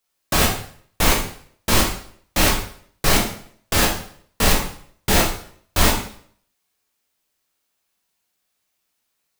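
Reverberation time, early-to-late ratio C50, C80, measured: 0.55 s, 6.0 dB, 9.0 dB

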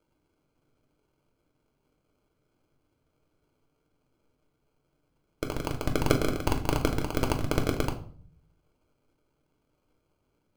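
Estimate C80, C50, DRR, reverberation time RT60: 16.0 dB, 12.5 dB, 3.0 dB, 0.50 s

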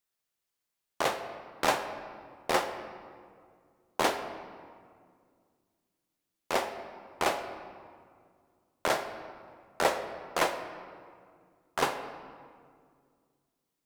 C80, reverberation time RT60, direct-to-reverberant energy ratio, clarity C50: 10.0 dB, 2.1 s, 7.0 dB, 9.0 dB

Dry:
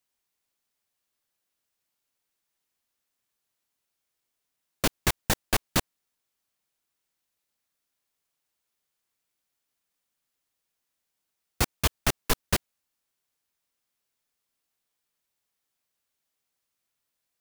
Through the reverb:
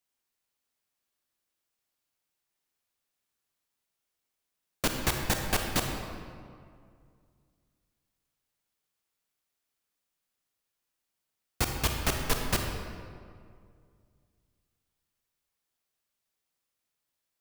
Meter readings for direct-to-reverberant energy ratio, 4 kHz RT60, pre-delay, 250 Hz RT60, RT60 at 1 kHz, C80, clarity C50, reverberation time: 2.5 dB, 1.3 s, 31 ms, 2.4 s, 2.1 s, 4.5 dB, 3.5 dB, 2.2 s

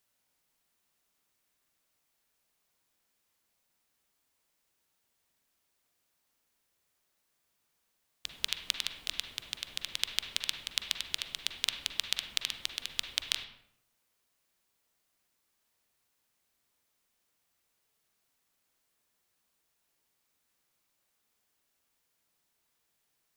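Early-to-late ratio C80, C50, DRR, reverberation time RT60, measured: 9.5 dB, 6.5 dB, 4.5 dB, 0.70 s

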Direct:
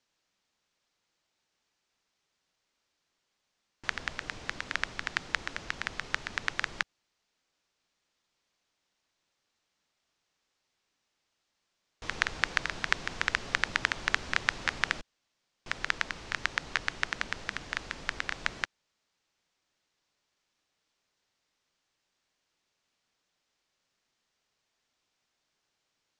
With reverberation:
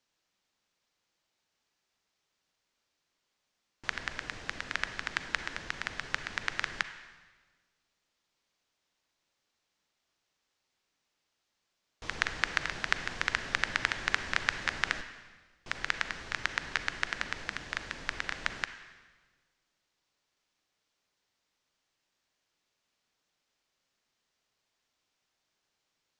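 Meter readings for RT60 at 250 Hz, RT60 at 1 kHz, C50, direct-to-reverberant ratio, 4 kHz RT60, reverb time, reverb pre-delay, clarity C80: 1.5 s, 1.3 s, 10.5 dB, 10.0 dB, 1.3 s, 1.4 s, 36 ms, 12.0 dB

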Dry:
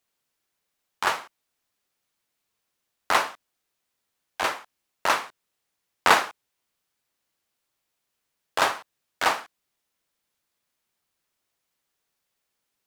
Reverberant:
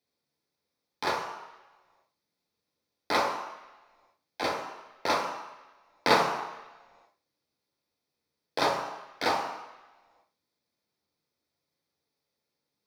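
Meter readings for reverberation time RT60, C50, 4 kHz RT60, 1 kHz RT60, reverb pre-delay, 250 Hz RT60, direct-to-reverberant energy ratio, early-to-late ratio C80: 1.1 s, 5.0 dB, 1.3 s, 1.2 s, 3 ms, 1.0 s, 0.0 dB, 7.5 dB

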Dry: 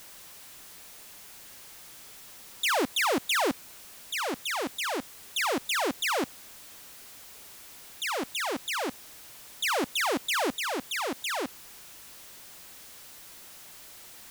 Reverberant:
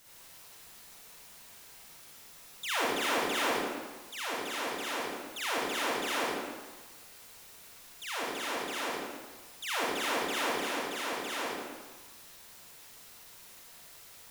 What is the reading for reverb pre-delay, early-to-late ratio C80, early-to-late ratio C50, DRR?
37 ms, -1.0 dB, -4.5 dB, -8.0 dB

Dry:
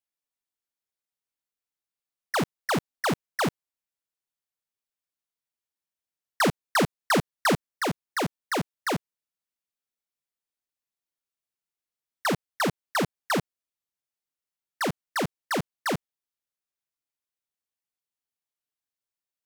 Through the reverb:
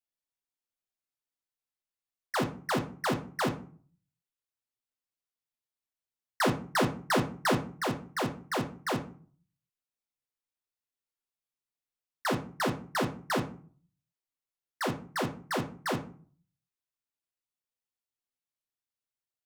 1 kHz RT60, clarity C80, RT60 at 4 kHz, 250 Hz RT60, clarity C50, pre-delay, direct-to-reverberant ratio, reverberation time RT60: 0.45 s, 17.5 dB, 0.25 s, 0.60 s, 12.5 dB, 8 ms, 3.0 dB, 0.45 s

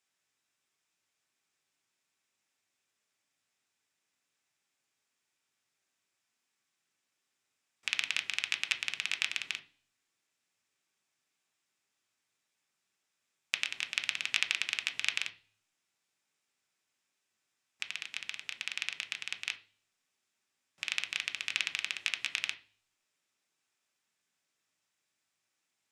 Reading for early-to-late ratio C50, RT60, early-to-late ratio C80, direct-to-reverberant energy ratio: 15.5 dB, 0.40 s, 21.0 dB, 6.0 dB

